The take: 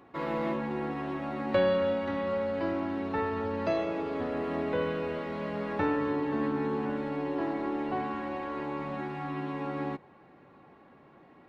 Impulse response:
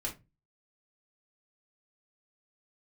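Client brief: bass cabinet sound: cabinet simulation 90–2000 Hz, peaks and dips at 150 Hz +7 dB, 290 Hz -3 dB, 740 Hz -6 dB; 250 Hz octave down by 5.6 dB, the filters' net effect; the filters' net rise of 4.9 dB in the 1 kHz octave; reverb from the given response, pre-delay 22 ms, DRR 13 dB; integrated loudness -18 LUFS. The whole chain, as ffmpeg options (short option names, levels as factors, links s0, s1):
-filter_complex "[0:a]equalizer=f=250:t=o:g=-6.5,equalizer=f=1000:t=o:g=8.5,asplit=2[s0][s1];[1:a]atrim=start_sample=2205,adelay=22[s2];[s1][s2]afir=irnorm=-1:irlink=0,volume=0.188[s3];[s0][s3]amix=inputs=2:normalize=0,highpass=f=90:w=0.5412,highpass=f=90:w=1.3066,equalizer=f=150:t=q:w=4:g=7,equalizer=f=290:t=q:w=4:g=-3,equalizer=f=740:t=q:w=4:g=-6,lowpass=f=2000:w=0.5412,lowpass=f=2000:w=1.3066,volume=4.73"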